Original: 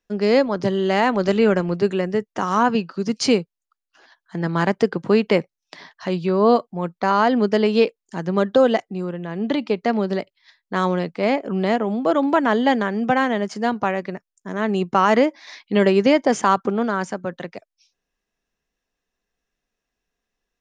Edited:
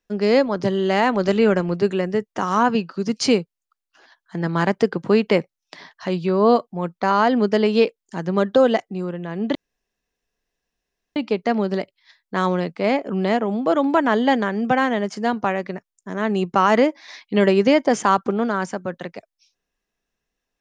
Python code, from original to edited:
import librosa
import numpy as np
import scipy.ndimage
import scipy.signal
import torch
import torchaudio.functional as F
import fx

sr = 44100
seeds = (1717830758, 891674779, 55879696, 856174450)

y = fx.edit(x, sr, fx.insert_room_tone(at_s=9.55, length_s=1.61), tone=tone)